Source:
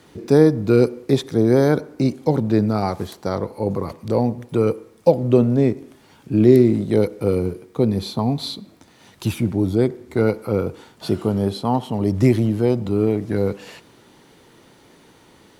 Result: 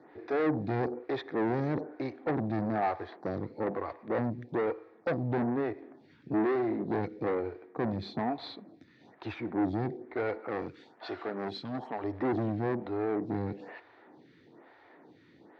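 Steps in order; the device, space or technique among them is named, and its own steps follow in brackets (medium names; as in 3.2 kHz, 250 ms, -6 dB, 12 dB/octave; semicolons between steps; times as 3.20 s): vibe pedal into a guitar amplifier (lamp-driven phase shifter 1.1 Hz; valve stage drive 24 dB, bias 0.45; cabinet simulation 110–3700 Hz, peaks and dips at 190 Hz -3 dB, 310 Hz +5 dB, 730 Hz +7 dB, 1.8 kHz +7 dB, 3 kHz -9 dB); 10.40–12.04 s: tilt EQ +2.5 dB/octave; trim -3.5 dB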